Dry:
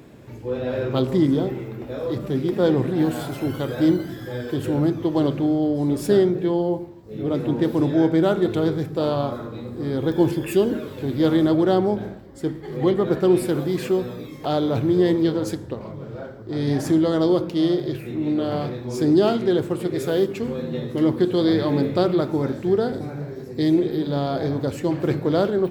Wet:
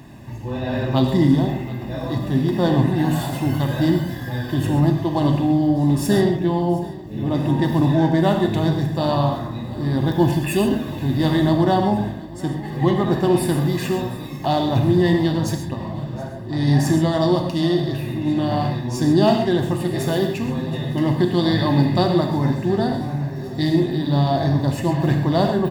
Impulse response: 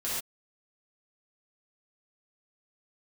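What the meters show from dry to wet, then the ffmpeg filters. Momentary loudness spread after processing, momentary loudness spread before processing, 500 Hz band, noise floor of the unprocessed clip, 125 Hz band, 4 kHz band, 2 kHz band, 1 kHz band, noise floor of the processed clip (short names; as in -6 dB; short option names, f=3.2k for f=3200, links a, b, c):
10 LU, 12 LU, -1.0 dB, -38 dBFS, +7.5 dB, +5.0 dB, +5.5 dB, +6.5 dB, -31 dBFS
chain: -filter_complex "[0:a]aecho=1:1:1.1:0.78,aecho=1:1:723|1446|2169|2892|3615:0.1|0.058|0.0336|0.0195|0.0113,asplit=2[a][b];[1:a]atrim=start_sample=2205[c];[b][c]afir=irnorm=-1:irlink=0,volume=-7.5dB[d];[a][d]amix=inputs=2:normalize=0"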